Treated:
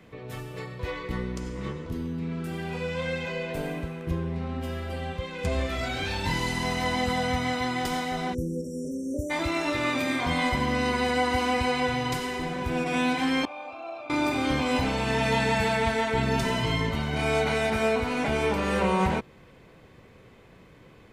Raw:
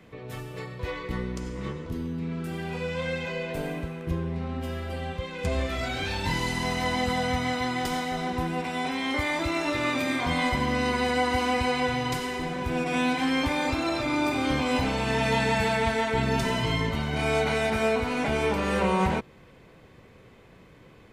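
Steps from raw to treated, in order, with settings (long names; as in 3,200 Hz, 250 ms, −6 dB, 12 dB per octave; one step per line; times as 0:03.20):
0:08.34–0:09.31: time-frequency box erased 610–5,400 Hz
0:13.45–0:14.10: formant filter a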